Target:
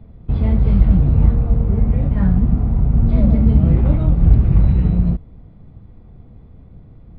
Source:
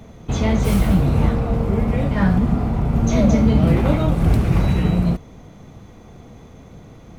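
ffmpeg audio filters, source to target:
ffmpeg -i in.wav -filter_complex "[0:a]aemphasis=mode=reproduction:type=riaa,asplit=2[link_01][link_02];[link_02]aeval=exprs='sgn(val(0))*max(abs(val(0))-0.0944,0)':channel_layout=same,volume=-9dB[link_03];[link_01][link_03]amix=inputs=2:normalize=0,aresample=11025,aresample=44100,volume=-12dB" out.wav

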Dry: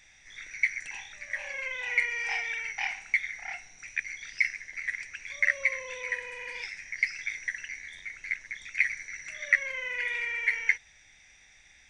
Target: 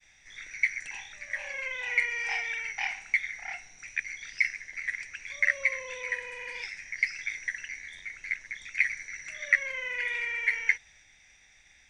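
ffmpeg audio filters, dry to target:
ffmpeg -i in.wav -af "agate=range=-33dB:threshold=-55dB:ratio=3:detection=peak" out.wav

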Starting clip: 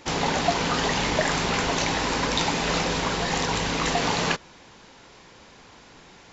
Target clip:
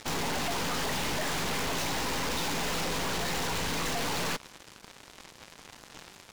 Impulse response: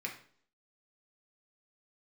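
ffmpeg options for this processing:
-af "acrusher=bits=6:mix=0:aa=0.5,aeval=exprs='(tanh(89.1*val(0)+0.65)-tanh(0.65))/89.1':channel_layout=same,volume=8dB"

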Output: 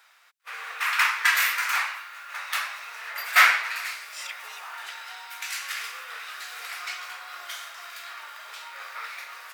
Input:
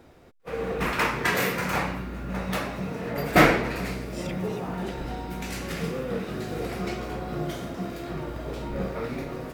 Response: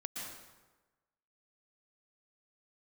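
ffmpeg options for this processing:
-af "highpass=frequency=1200:width=0.5412,highpass=frequency=1200:width=1.3066,volume=5.5dB"

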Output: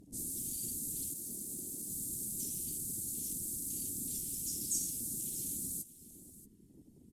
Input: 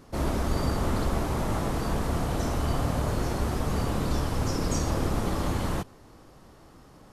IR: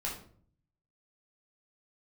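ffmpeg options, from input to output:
-filter_complex "[0:a]asplit=3[link_01][link_02][link_03];[link_01]afade=type=out:start_time=1.13:duration=0.02[link_04];[link_02]aeval=exprs='val(0)*sin(2*PI*380*n/s)':channel_layout=same,afade=type=in:start_time=1.13:duration=0.02,afade=type=out:start_time=1.88:duration=0.02[link_05];[link_03]afade=type=in:start_time=1.88:duration=0.02[link_06];[link_04][link_05][link_06]amix=inputs=3:normalize=0,acrossover=split=4800[link_07][link_08];[link_07]acompressor=threshold=-39dB:ratio=12[link_09];[link_09][link_08]amix=inputs=2:normalize=0,firequalizer=gain_entry='entry(120,0);entry(250,7);entry(410,-22);entry(930,-26);entry(2000,-9);entry(3200,-3);entry(5000,-2);entry(8200,13)':delay=0.05:min_phase=1,afftfilt=real='hypot(re,im)*cos(2*PI*random(0))':imag='hypot(re,im)*sin(2*PI*random(1))':win_size=512:overlap=0.75,acompressor=mode=upward:threshold=-55dB:ratio=2.5,afwtdn=0.00126,lowshelf=frequency=160:gain=-11.5,aecho=1:1:630:0.141,volume=3.5dB"

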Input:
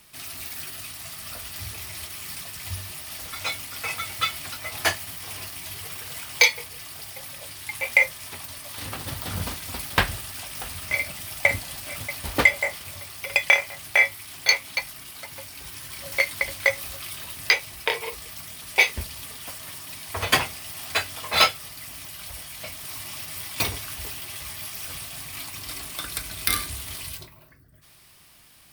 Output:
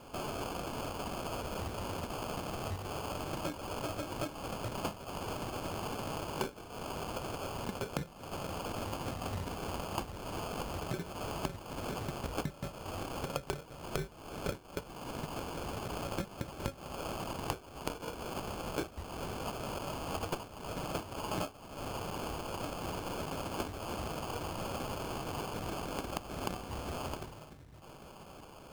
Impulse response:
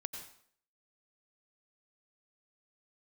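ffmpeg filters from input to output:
-af "acrusher=samples=23:mix=1:aa=0.000001,acompressor=threshold=-37dB:ratio=8,volume=2dB"

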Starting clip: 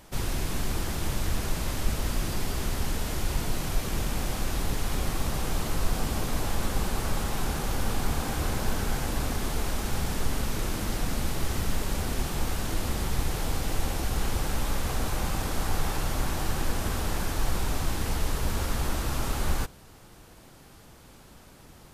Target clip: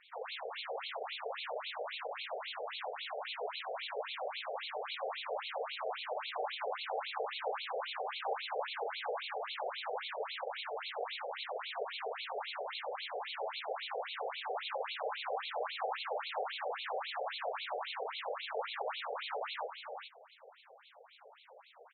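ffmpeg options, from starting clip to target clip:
ffmpeg -i in.wav -af "equalizer=frequency=1600:width_type=o:width=2.2:gain=-8,aecho=1:1:424:0.501,afftfilt=real='re*between(b*sr/1024,550*pow(3100/550,0.5+0.5*sin(2*PI*3.7*pts/sr))/1.41,550*pow(3100/550,0.5+0.5*sin(2*PI*3.7*pts/sr))*1.41)':imag='im*between(b*sr/1024,550*pow(3100/550,0.5+0.5*sin(2*PI*3.7*pts/sr))/1.41,550*pow(3100/550,0.5+0.5*sin(2*PI*3.7*pts/sr))*1.41)':win_size=1024:overlap=0.75,volume=7dB" out.wav

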